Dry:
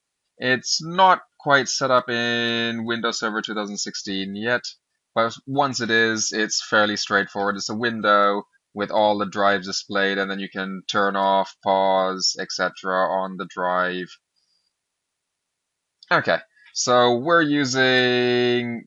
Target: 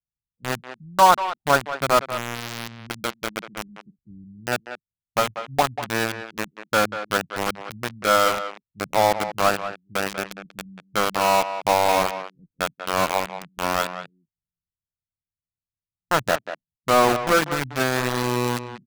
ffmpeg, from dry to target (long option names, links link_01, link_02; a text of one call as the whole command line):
ffmpeg -i in.wav -filter_complex "[0:a]lowpass=frequency=3900:width=0.5412,lowpass=frequency=3900:width=1.3066,highshelf=frequency=1700:width_type=q:width=1.5:gain=-11.5,acrossover=split=150[link_01][link_02];[link_02]aeval=exprs='val(0)*gte(abs(val(0)),0.168)':channel_layout=same[link_03];[link_01][link_03]amix=inputs=2:normalize=0,asplit=2[link_04][link_05];[link_05]adelay=190,highpass=300,lowpass=3400,asoftclip=type=hard:threshold=-9.5dB,volume=-10dB[link_06];[link_04][link_06]amix=inputs=2:normalize=0,volume=-1dB" out.wav